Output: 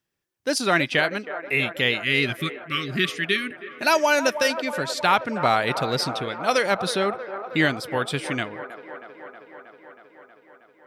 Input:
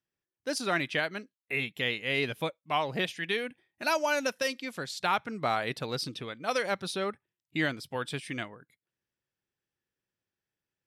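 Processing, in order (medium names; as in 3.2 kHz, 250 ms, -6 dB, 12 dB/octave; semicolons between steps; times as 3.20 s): spectral selection erased 1.95–3.48 s, 410–1100 Hz; feedback echo behind a band-pass 318 ms, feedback 74%, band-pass 780 Hz, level -10 dB; trim +8.5 dB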